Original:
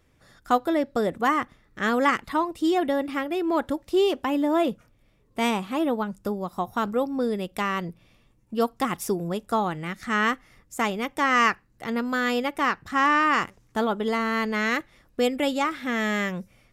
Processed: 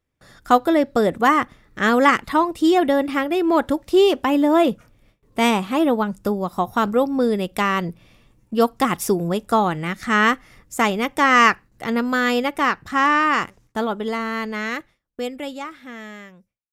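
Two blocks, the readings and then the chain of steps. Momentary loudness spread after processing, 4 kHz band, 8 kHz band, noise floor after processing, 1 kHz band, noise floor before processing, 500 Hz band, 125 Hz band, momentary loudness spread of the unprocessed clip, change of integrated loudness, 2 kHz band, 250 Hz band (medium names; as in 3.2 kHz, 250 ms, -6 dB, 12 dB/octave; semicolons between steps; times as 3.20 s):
14 LU, +5.0 dB, +5.5 dB, -67 dBFS, +5.5 dB, -62 dBFS, +5.5 dB, +5.5 dB, 9 LU, +6.0 dB, +5.0 dB, +5.5 dB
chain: fade out at the end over 5.17 s; gate with hold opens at -53 dBFS; trim +6.5 dB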